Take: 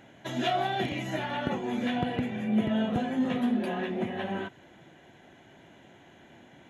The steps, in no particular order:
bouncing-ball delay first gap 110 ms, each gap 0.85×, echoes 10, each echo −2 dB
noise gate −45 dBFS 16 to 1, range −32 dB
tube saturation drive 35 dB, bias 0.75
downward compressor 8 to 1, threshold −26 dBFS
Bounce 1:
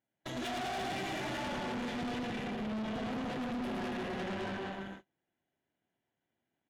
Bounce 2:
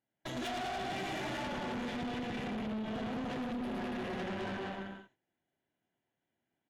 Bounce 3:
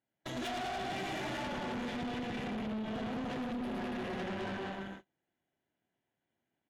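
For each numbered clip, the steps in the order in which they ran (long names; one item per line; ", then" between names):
downward compressor, then bouncing-ball delay, then tube saturation, then noise gate
noise gate, then bouncing-ball delay, then downward compressor, then tube saturation
bouncing-ball delay, then downward compressor, then tube saturation, then noise gate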